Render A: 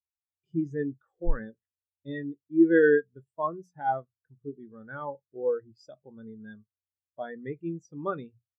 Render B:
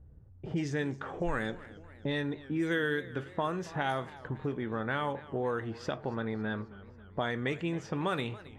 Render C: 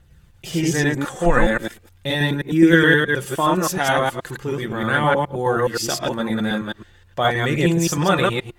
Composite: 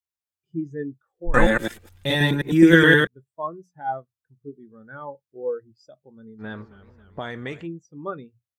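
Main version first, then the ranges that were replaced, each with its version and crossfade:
A
1.34–3.07 s: from C
6.41–7.65 s: from B, crossfade 0.06 s

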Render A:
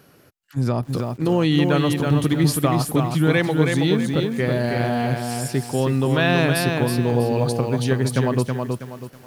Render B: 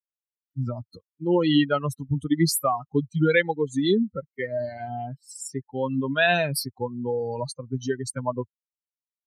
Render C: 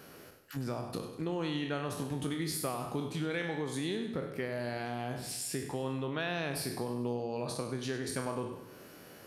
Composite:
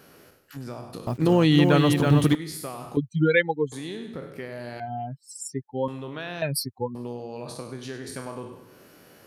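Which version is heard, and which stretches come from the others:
C
1.07–2.35 s: from A
2.97–3.72 s: from B
4.80–5.88 s: from B
6.42–6.95 s: from B

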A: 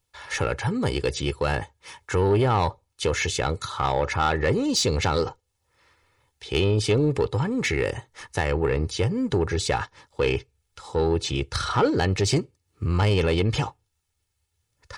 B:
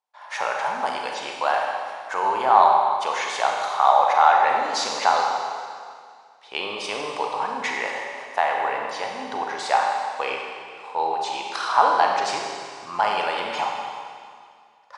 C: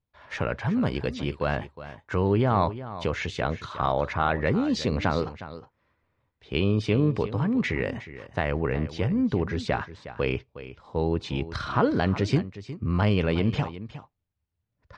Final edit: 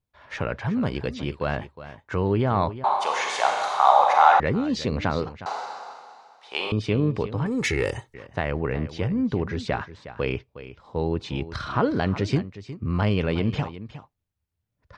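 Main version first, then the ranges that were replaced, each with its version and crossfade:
C
2.84–4.40 s: from B
5.46–6.72 s: from B
7.46–8.14 s: from A

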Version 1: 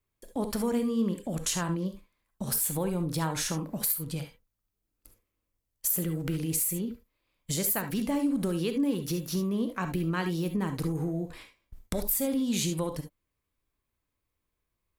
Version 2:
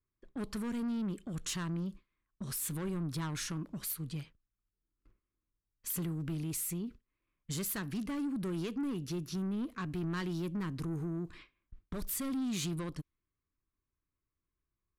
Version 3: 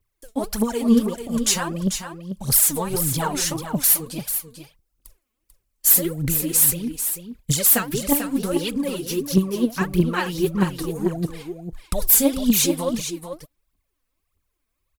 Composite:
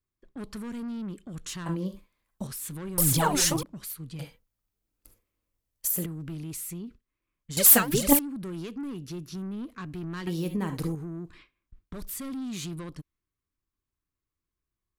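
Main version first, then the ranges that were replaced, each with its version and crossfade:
2
1.66–2.47 s: from 1
2.98–3.63 s: from 3
4.19–6.06 s: from 1
7.57–8.19 s: from 3
10.27–10.95 s: from 1

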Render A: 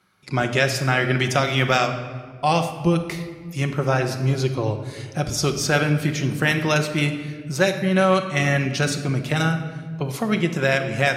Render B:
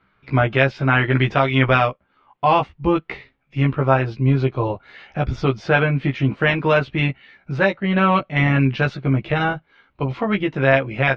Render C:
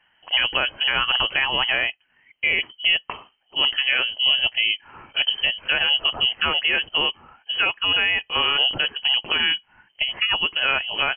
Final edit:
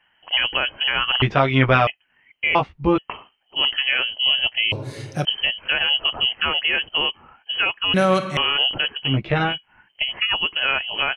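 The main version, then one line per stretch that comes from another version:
C
1.22–1.87 s: from B
2.55–2.98 s: from B
4.72–5.25 s: from A
7.94–8.37 s: from A
9.10–9.51 s: from B, crossfade 0.16 s

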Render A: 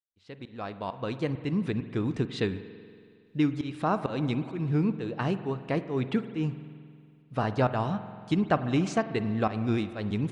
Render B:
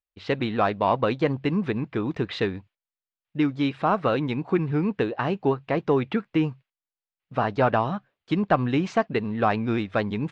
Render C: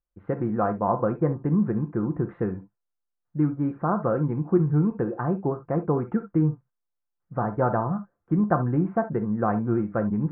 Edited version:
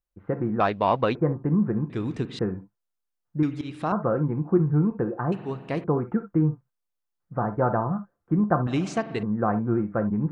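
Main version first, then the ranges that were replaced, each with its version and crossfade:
C
0.60–1.15 s: from B
1.90–2.39 s: from A
3.43–3.92 s: from A
5.32–5.84 s: from A
8.67–9.23 s: from A

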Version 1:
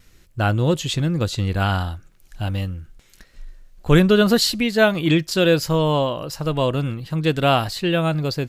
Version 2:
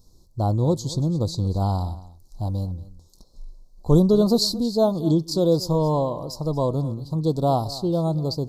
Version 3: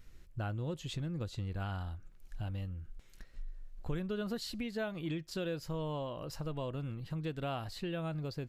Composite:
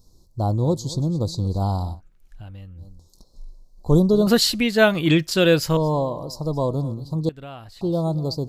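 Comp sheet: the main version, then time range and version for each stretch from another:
2
1.97–2.80 s: from 3, crossfade 0.10 s
4.27–5.77 s: from 1
7.29–7.81 s: from 3

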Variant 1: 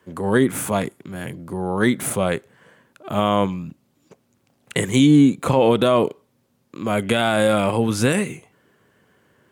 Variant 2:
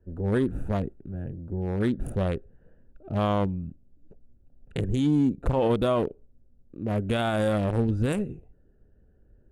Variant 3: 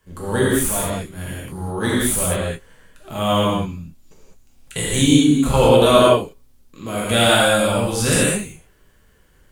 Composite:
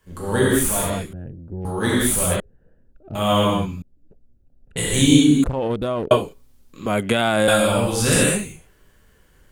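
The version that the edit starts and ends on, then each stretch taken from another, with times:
3
1.13–1.65 s: from 2
2.40–3.15 s: from 2
3.82–4.77 s: from 2
5.44–6.11 s: from 2
6.86–7.48 s: from 1

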